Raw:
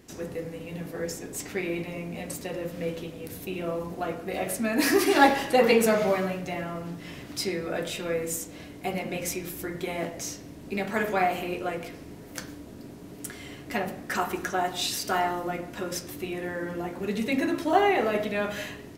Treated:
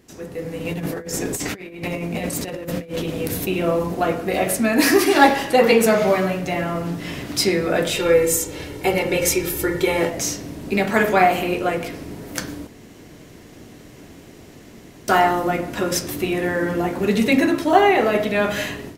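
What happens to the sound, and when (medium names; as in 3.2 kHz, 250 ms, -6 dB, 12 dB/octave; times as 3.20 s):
0.65–3.46 s: compressor with a negative ratio -37 dBFS, ratio -0.5
7.96–10.10 s: comb 2.2 ms
12.67–15.08 s: room tone
whole clip: level rider gain up to 11 dB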